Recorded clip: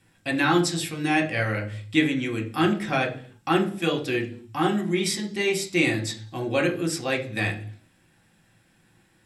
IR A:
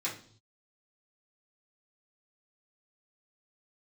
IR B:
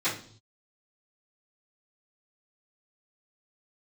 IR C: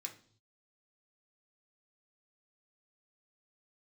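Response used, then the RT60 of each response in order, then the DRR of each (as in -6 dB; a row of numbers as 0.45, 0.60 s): C; not exponential, not exponential, not exponential; -7.5, -17.5, 1.5 dB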